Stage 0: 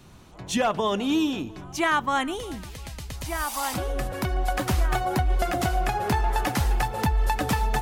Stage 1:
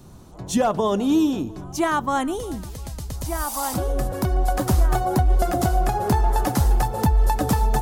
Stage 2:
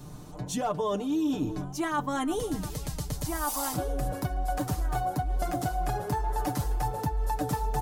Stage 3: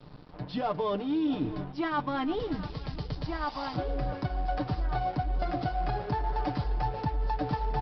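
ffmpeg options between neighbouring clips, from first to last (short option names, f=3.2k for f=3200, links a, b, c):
-af "equalizer=f=2.4k:t=o:w=1.7:g=-12.5,volume=5.5dB"
-af "aecho=1:1:6.7:0.66,areverse,acompressor=threshold=-27dB:ratio=5,areverse"
-af "aresample=11025,aeval=exprs='sgn(val(0))*max(abs(val(0))-0.00473,0)':c=same,aresample=44100,aecho=1:1:669:0.119"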